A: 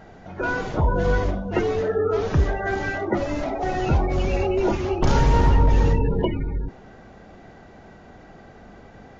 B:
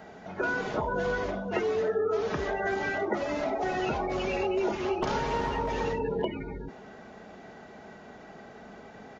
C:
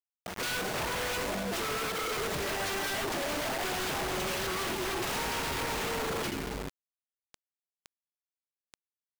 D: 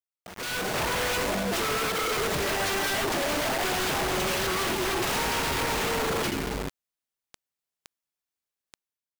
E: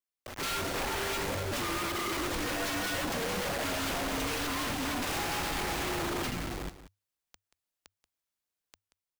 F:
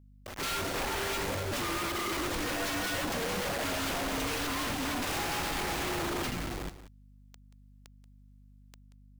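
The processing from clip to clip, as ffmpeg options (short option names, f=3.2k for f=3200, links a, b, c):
-filter_complex "[0:a]highpass=f=240:p=1,aecho=1:1:4.7:0.3,acrossover=split=350|5200[a][b][c];[a]acompressor=threshold=-36dB:ratio=4[d];[b]acompressor=threshold=-28dB:ratio=4[e];[c]acompressor=threshold=-59dB:ratio=4[f];[d][e][f]amix=inputs=3:normalize=0"
-af "acrusher=bits=5:mix=0:aa=0.000001,aeval=exprs='(mod(26.6*val(0)+1,2)-1)/26.6':c=same"
-af "dynaudnorm=f=150:g=7:m=11dB,volume=-5.5dB"
-af "alimiter=level_in=6dB:limit=-24dB:level=0:latency=1:release=198,volume=-6dB,afreqshift=-100,aecho=1:1:182:0.2"
-af "aeval=exprs='val(0)+0.00178*(sin(2*PI*50*n/s)+sin(2*PI*2*50*n/s)/2+sin(2*PI*3*50*n/s)/3+sin(2*PI*4*50*n/s)/4+sin(2*PI*5*50*n/s)/5)':c=same"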